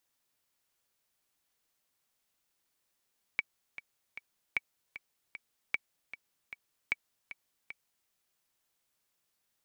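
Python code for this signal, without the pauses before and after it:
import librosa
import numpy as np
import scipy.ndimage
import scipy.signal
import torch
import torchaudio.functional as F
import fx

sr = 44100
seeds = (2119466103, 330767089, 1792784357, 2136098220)

y = fx.click_track(sr, bpm=153, beats=3, bars=4, hz=2280.0, accent_db=14.0, level_db=-15.5)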